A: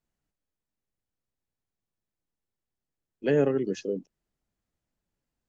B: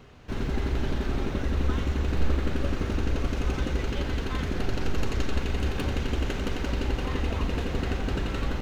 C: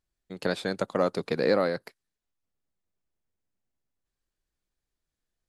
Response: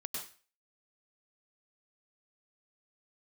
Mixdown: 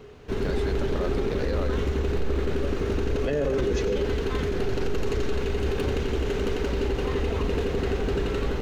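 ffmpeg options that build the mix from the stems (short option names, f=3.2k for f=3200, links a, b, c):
-filter_complex "[0:a]aphaser=in_gain=1:out_gain=1:delay=2.4:decay=0.39:speed=0.4:type=triangular,volume=1dB,asplit=2[a][b];[b]volume=-4dB[c];[1:a]equalizer=f=420:t=o:w=0.32:g=13.5,volume=1dB[d];[2:a]volume=-6.5dB[e];[3:a]atrim=start_sample=2205[f];[c][f]afir=irnorm=-1:irlink=0[g];[a][d][e][g]amix=inputs=4:normalize=0,alimiter=limit=-17.5dB:level=0:latency=1:release=13"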